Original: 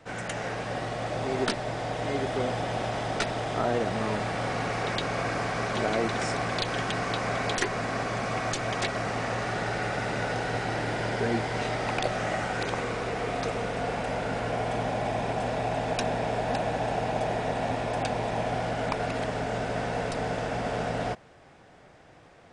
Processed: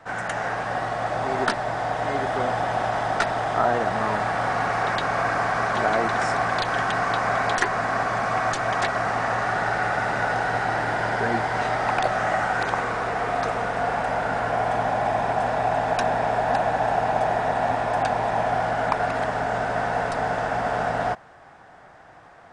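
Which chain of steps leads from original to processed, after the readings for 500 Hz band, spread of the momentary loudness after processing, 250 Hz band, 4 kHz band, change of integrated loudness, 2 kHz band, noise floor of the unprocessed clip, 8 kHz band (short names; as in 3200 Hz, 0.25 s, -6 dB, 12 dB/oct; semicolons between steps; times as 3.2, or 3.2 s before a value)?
+4.0 dB, 3 LU, 0.0 dB, 0.0 dB, +5.5 dB, +7.0 dB, -53 dBFS, 0.0 dB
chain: band shelf 1100 Hz +9 dB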